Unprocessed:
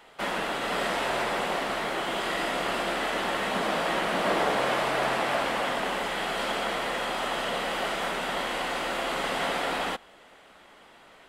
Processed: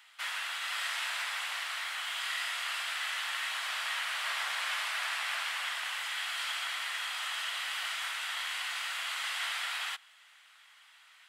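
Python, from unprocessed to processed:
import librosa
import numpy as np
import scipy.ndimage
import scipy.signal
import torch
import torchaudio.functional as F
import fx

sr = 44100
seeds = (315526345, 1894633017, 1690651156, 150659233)

y = scipy.signal.sosfilt(scipy.signal.bessel(4, 1900.0, 'highpass', norm='mag', fs=sr, output='sos'), x)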